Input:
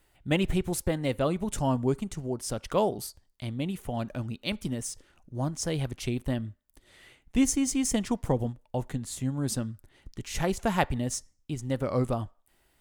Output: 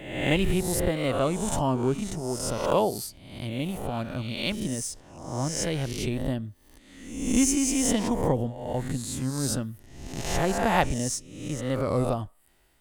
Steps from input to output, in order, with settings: reverse spectral sustain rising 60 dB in 0.85 s; 6.19–7.38 s: dynamic bell 2.1 kHz, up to -5 dB, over -50 dBFS, Q 0.94

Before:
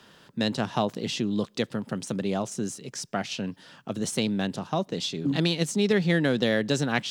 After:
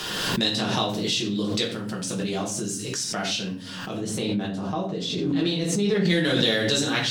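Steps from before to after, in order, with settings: treble shelf 2.3 kHz +10.5 dB, from 3.93 s -3 dB, from 6.05 s +11 dB; simulated room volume 47 m³, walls mixed, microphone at 1 m; dynamic bell 3.7 kHz, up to +7 dB, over -38 dBFS, Q 6.1; swell ahead of each attack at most 26 dB/s; trim -7.5 dB

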